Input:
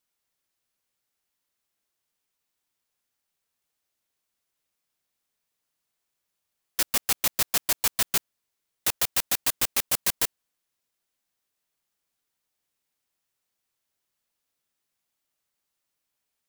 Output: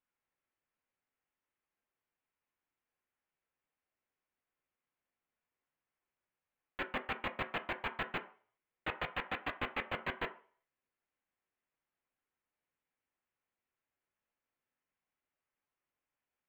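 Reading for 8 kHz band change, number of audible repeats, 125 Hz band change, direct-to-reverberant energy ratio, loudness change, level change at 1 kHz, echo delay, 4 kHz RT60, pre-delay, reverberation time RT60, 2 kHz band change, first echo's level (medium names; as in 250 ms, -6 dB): under -40 dB, no echo, -5.0 dB, 6.5 dB, -15.0 dB, -3.5 dB, no echo, 0.45 s, 3 ms, 0.45 s, -4.5 dB, no echo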